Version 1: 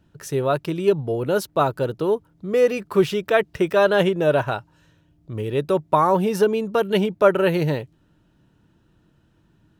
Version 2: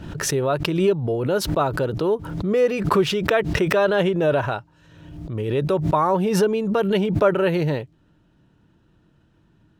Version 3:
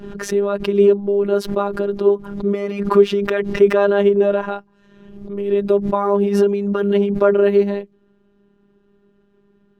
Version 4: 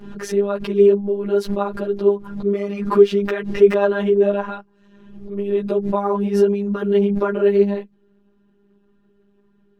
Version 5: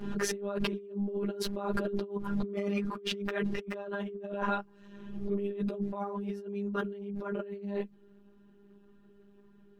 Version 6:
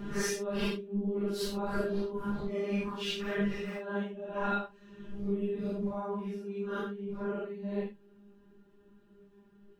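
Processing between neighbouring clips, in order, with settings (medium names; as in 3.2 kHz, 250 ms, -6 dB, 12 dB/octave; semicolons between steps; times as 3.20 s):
in parallel at -2 dB: peak limiter -16 dBFS, peak gain reduction 12 dB; on the sum: treble shelf 9.1 kHz -10.5 dB; swell ahead of each attack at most 51 dB/s; trim -4.5 dB
peaking EQ 350 Hz +13.5 dB 0.22 oct; robot voice 201 Hz; treble shelf 3.2 kHz -9.5 dB; trim +2.5 dB
three-phase chorus
compressor with a negative ratio -28 dBFS, ratio -1; trim -8 dB
phase randomisation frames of 200 ms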